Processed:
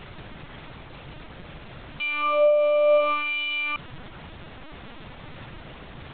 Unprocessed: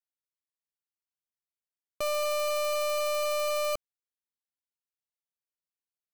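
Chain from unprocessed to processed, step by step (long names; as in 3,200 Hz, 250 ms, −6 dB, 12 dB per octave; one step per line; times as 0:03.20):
auto-filter high-pass sine 0.65 Hz 360–2,700 Hz
reversed playback
upward compression, threshold −42 dBFS
reversed playback
background noise pink −47 dBFS
linear-prediction vocoder at 8 kHz pitch kept
parametric band 140 Hz +5 dB 0.67 octaves
level +6 dB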